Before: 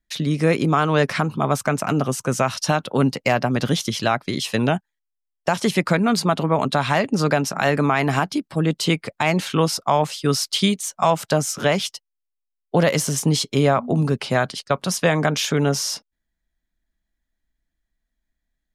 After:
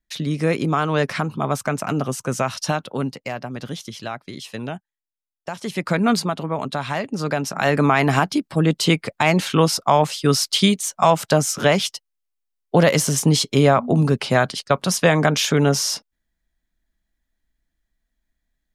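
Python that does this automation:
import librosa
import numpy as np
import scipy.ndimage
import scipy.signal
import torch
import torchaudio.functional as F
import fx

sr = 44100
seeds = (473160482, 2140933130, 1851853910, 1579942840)

y = fx.gain(x, sr, db=fx.line((2.69, -2.0), (3.31, -10.0), (5.6, -10.0), (6.1, 2.0), (6.33, -5.5), (7.19, -5.5), (7.85, 2.5)))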